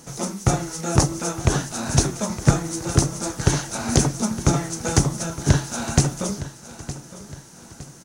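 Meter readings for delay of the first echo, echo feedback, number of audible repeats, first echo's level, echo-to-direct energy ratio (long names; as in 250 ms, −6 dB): 913 ms, 43%, 3, −15.0 dB, −14.0 dB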